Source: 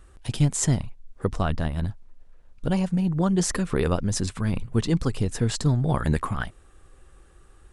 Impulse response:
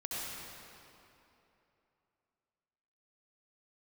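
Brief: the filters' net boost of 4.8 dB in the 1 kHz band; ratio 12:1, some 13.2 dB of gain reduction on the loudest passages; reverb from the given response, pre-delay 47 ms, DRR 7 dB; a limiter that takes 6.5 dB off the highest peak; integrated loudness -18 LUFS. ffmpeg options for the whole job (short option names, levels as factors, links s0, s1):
-filter_complex "[0:a]equalizer=f=1000:t=o:g=6,acompressor=threshold=0.0316:ratio=12,alimiter=level_in=1.26:limit=0.0631:level=0:latency=1,volume=0.794,asplit=2[s0][s1];[1:a]atrim=start_sample=2205,adelay=47[s2];[s1][s2]afir=irnorm=-1:irlink=0,volume=0.299[s3];[s0][s3]amix=inputs=2:normalize=0,volume=8.91"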